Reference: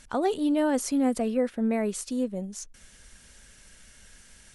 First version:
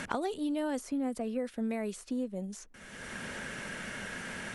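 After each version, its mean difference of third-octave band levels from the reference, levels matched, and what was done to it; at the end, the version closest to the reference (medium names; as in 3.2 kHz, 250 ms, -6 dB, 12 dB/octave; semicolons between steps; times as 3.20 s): 9.5 dB: three bands compressed up and down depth 100%; trim -8 dB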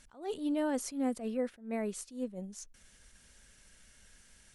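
2.0 dB: attacks held to a fixed rise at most 160 dB/s; trim -7.5 dB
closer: second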